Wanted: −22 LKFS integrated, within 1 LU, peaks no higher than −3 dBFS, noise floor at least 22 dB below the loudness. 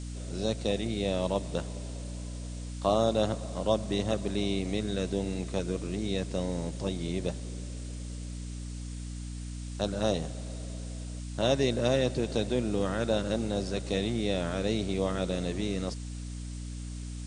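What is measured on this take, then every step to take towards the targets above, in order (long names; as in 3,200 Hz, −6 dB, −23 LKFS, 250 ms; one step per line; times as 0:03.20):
mains hum 60 Hz; hum harmonics up to 300 Hz; level of the hum −36 dBFS; background noise floor −39 dBFS; target noise floor −54 dBFS; integrated loudness −32.0 LKFS; sample peak −12.0 dBFS; target loudness −22.0 LKFS
→ mains-hum notches 60/120/180/240/300 Hz
noise reduction from a noise print 15 dB
level +10 dB
brickwall limiter −3 dBFS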